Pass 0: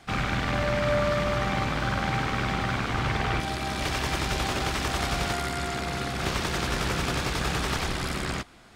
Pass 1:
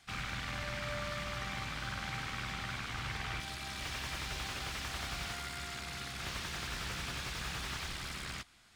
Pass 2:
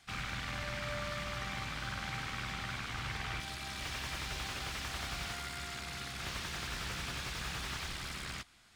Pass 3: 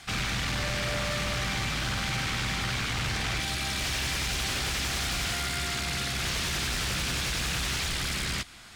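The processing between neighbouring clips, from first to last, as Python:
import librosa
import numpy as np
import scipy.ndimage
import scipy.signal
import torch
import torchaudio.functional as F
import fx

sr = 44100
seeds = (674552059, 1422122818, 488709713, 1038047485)

y1 = fx.tone_stack(x, sr, knobs='5-5-5')
y1 = fx.slew_limit(y1, sr, full_power_hz=34.0)
y1 = y1 * librosa.db_to_amplitude(1.0)
y2 = y1
y3 = fx.dynamic_eq(y2, sr, hz=1000.0, q=1.1, threshold_db=-55.0, ratio=4.0, max_db=-5)
y3 = fx.fold_sine(y3, sr, drive_db=11, ceiling_db=-26.5)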